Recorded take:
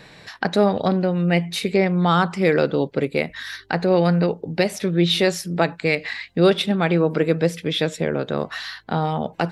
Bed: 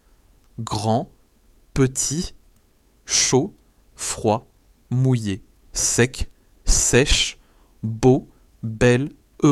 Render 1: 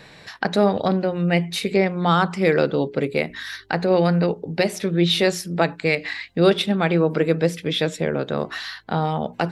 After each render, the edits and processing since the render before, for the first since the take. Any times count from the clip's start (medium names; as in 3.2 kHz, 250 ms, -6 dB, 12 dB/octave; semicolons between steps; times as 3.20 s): hum notches 60/120/180/240/300/360/420 Hz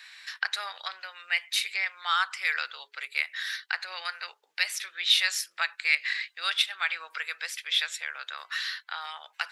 high-pass 1.4 kHz 24 dB/octave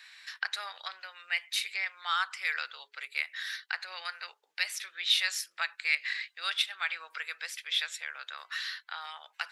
trim -4 dB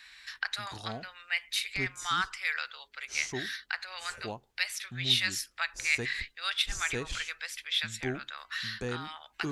add bed -20.5 dB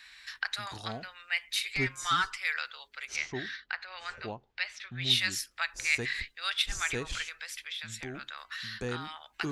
1.63–2.37 s: comb 7.5 ms; 3.16–5.02 s: distance through air 160 m; 7.27–8.82 s: compression, threshold -35 dBFS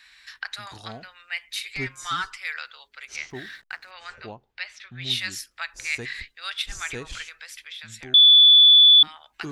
3.30–3.91 s: hysteresis with a dead band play -48 dBFS; 8.14–9.03 s: bleep 3.46 kHz -9 dBFS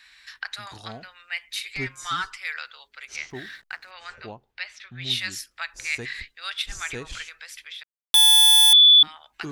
7.83–8.73 s: Schmitt trigger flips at -20.5 dBFS